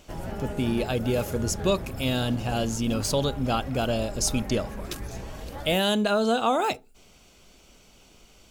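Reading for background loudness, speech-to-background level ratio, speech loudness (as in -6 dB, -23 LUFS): -37.0 LUFS, 10.5 dB, -26.5 LUFS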